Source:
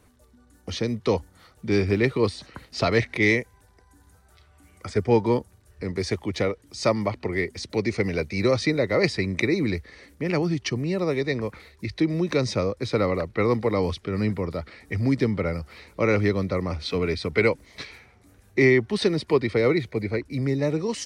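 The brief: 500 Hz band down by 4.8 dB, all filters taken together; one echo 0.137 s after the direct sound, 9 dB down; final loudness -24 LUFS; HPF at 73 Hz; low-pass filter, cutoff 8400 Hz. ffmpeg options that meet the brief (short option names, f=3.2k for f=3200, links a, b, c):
-af "highpass=73,lowpass=8.4k,equalizer=f=500:t=o:g=-6,aecho=1:1:137:0.355,volume=2.5dB"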